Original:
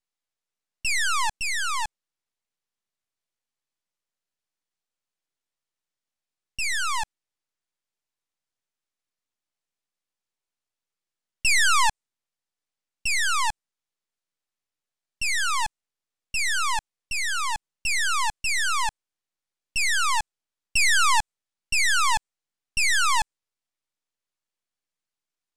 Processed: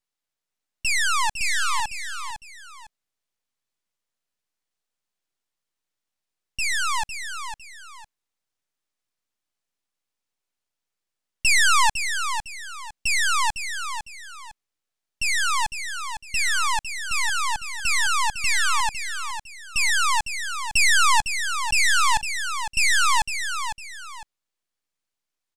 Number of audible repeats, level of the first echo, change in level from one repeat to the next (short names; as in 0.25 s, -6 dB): 2, -8.5 dB, -10.5 dB